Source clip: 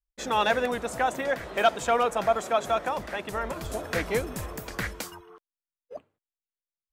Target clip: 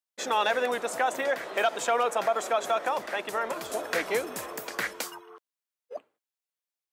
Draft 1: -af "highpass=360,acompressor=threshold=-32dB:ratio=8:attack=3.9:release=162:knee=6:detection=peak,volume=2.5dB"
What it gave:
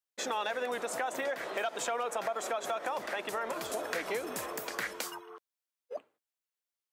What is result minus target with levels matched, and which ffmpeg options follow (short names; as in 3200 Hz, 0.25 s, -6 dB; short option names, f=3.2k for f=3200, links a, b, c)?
compressor: peak gain reduction +9 dB
-af "highpass=360,acompressor=threshold=-21.5dB:ratio=8:attack=3.9:release=162:knee=6:detection=peak,volume=2.5dB"